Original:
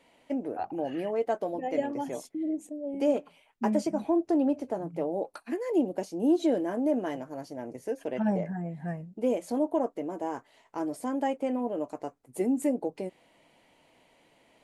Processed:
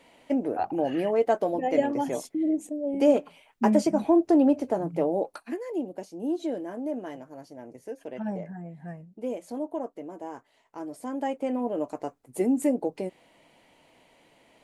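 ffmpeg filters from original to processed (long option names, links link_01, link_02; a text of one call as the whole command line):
ffmpeg -i in.wav -af "volume=13.5dB,afade=type=out:start_time=5.07:duration=0.65:silence=0.298538,afade=type=in:start_time=10.87:duration=0.94:silence=0.398107" out.wav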